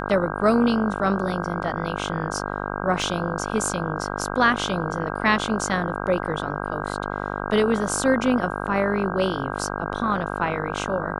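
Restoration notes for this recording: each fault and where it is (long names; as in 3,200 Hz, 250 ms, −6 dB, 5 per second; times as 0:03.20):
mains buzz 50 Hz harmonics 32 −29 dBFS
0:03.02: drop-out 2 ms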